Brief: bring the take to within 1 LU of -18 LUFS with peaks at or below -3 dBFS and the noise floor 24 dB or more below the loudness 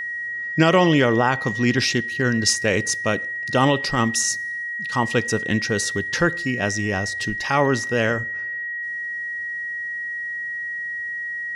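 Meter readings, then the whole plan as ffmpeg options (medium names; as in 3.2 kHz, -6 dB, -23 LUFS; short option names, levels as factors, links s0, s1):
steady tone 1.9 kHz; tone level -26 dBFS; loudness -21.5 LUFS; peak level -5.5 dBFS; loudness target -18.0 LUFS
-> -af "bandreject=f=1900:w=30"
-af "volume=1.5,alimiter=limit=0.708:level=0:latency=1"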